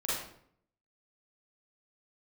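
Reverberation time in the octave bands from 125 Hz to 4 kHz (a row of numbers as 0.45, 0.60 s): 0.80, 0.75, 0.70, 0.60, 0.55, 0.45 s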